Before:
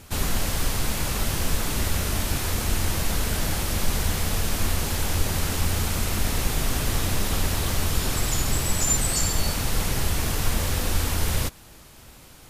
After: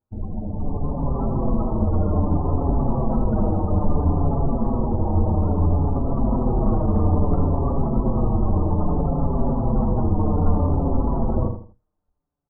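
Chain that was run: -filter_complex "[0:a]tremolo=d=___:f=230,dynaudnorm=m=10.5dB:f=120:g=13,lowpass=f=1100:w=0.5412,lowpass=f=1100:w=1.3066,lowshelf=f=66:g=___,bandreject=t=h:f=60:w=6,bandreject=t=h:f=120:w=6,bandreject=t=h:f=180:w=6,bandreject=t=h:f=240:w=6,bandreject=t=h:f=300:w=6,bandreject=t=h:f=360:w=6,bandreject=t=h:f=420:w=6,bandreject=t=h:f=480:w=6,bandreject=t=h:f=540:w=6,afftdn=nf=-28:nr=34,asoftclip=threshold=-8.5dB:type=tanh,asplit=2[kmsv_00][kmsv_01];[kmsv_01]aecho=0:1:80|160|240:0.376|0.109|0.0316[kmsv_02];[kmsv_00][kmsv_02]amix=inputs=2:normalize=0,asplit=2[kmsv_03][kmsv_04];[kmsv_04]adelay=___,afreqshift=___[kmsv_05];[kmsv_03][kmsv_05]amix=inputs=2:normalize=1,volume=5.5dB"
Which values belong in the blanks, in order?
0.462, -6, 5.8, -0.61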